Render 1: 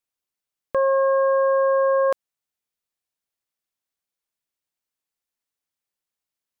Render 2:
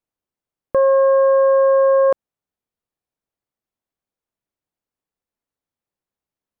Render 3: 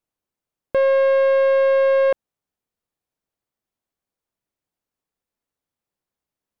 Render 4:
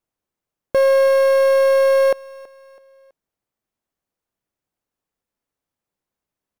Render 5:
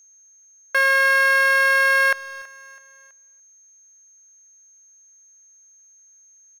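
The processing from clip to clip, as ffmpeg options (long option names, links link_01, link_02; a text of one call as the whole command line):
ffmpeg -i in.wav -af "tiltshelf=frequency=1400:gain=8" out.wav
ffmpeg -i in.wav -af "asoftclip=type=tanh:threshold=-14.5dB,volume=1.5dB" out.wav
ffmpeg -i in.wav -filter_complex "[0:a]asplit=2[link_01][link_02];[link_02]acrusher=samples=9:mix=1:aa=0.000001,volume=-10dB[link_03];[link_01][link_03]amix=inputs=2:normalize=0,aecho=1:1:327|654|981:0.0841|0.0353|0.0148" out.wav
ffmpeg -i in.wav -filter_complex "[0:a]highpass=frequency=1600:width_type=q:width=3,aeval=exprs='val(0)+0.002*sin(2*PI*6400*n/s)':channel_layout=same,asplit=2[link_01][link_02];[link_02]adelay=290,highpass=300,lowpass=3400,asoftclip=type=hard:threshold=-20.5dB,volume=-20dB[link_03];[link_01][link_03]amix=inputs=2:normalize=0,volume=4dB" out.wav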